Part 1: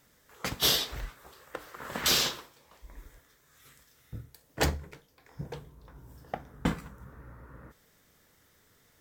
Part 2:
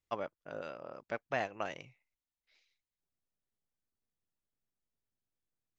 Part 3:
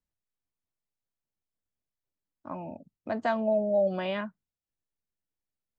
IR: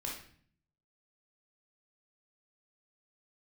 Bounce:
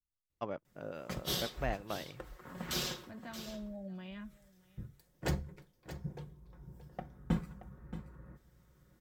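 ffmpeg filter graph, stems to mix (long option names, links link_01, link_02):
-filter_complex "[0:a]aecho=1:1:5.5:0.54,adelay=650,volume=-13dB,asplit=2[link_01][link_02];[link_02]volume=-12.5dB[link_03];[1:a]adelay=300,volume=-5.5dB[link_04];[2:a]equalizer=frequency=560:width=0.67:gain=-15,flanger=delay=10:depth=1.4:regen=-69:speed=0.44:shape=triangular,volume=-10dB,asplit=3[link_05][link_06][link_07];[link_06]volume=-22dB[link_08];[link_07]apad=whole_len=426229[link_09];[link_01][link_09]sidechaincompress=threshold=-55dB:ratio=8:attack=12:release=417[link_10];[link_03][link_08]amix=inputs=2:normalize=0,aecho=0:1:626:1[link_11];[link_10][link_04][link_05][link_11]amix=inputs=4:normalize=0,lowshelf=frequency=430:gain=11"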